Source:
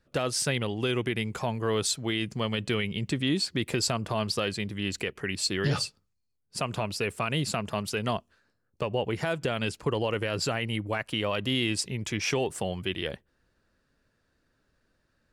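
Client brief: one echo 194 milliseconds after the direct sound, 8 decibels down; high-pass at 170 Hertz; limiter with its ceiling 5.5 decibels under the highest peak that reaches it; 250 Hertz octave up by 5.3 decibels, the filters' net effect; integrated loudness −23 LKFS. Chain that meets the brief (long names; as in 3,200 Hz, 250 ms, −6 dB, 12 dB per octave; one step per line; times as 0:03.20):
high-pass filter 170 Hz
parametric band 250 Hz +8 dB
brickwall limiter −18 dBFS
single-tap delay 194 ms −8 dB
level +6 dB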